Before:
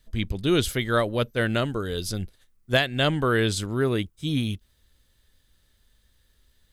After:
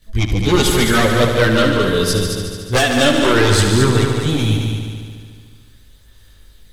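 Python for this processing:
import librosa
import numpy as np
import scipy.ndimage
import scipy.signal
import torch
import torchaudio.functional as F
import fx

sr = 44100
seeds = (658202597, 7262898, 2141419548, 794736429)

y = fx.fold_sine(x, sr, drive_db=10, ceiling_db=-7.0)
y = fx.chorus_voices(y, sr, voices=2, hz=0.4, base_ms=19, depth_ms=2.5, mix_pct=70)
y = fx.echo_heads(y, sr, ms=73, heads='all three', feedback_pct=58, wet_db=-9.0)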